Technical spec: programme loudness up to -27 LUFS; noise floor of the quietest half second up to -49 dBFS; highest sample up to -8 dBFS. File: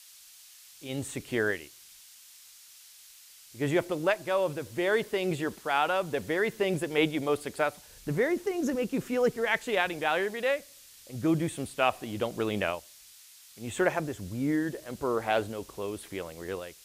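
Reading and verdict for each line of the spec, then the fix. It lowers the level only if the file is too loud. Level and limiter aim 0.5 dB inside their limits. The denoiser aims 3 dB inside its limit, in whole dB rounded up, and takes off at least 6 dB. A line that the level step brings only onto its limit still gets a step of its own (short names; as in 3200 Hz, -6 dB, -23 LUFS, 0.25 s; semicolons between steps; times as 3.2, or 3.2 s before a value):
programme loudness -30.0 LUFS: OK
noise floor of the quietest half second -54 dBFS: OK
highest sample -11.5 dBFS: OK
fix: none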